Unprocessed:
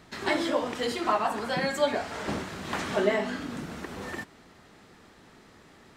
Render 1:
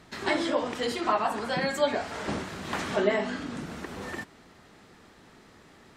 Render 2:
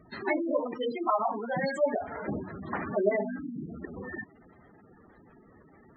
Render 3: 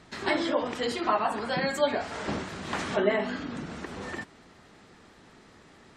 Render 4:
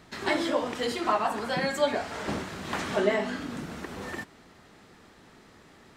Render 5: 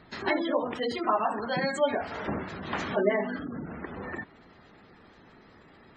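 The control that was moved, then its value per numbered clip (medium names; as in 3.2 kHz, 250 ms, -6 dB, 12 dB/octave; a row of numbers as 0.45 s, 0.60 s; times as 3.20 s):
spectral gate, under each frame's peak: -45 dB, -10 dB, -35 dB, -60 dB, -20 dB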